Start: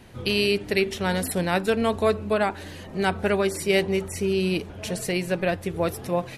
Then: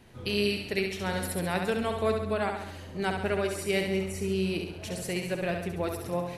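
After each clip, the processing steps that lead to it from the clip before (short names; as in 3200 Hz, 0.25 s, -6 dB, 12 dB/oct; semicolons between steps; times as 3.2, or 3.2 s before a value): flutter echo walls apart 11.7 m, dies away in 0.79 s; gain -7 dB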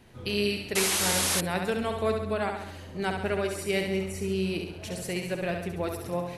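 painted sound noise, 0.75–1.41, 280–12000 Hz -27 dBFS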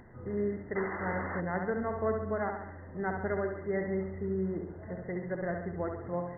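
upward compressor, threshold -44 dBFS; brick-wall FIR low-pass 2100 Hz; gain -3.5 dB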